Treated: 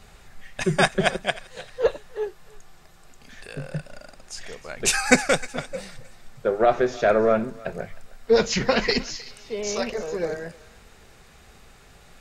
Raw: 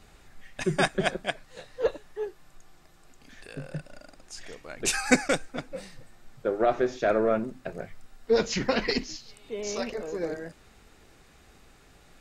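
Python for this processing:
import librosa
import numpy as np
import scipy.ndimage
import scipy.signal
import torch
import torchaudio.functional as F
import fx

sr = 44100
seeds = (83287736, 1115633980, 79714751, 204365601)

p1 = fx.peak_eq(x, sr, hz=300.0, db=-11.5, octaves=0.28)
p2 = p1 + fx.echo_thinned(p1, sr, ms=309, feedback_pct=34, hz=1200.0, wet_db=-17, dry=0)
y = F.gain(torch.from_numpy(p2), 5.5).numpy()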